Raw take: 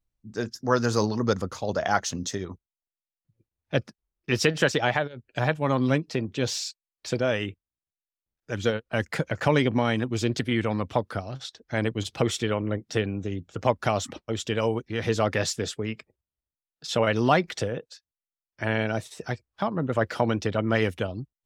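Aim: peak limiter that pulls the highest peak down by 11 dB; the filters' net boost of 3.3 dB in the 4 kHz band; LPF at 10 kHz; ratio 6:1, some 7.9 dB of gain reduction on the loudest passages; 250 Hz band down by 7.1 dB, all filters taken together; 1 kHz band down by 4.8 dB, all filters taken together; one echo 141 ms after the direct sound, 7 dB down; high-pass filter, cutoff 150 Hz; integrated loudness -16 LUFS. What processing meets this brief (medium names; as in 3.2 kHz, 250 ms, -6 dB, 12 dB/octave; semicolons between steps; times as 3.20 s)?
high-pass 150 Hz; low-pass 10 kHz; peaking EQ 250 Hz -8 dB; peaking EQ 1 kHz -6.5 dB; peaking EQ 4 kHz +5 dB; compression 6:1, threshold -28 dBFS; peak limiter -26 dBFS; delay 141 ms -7 dB; trim +21 dB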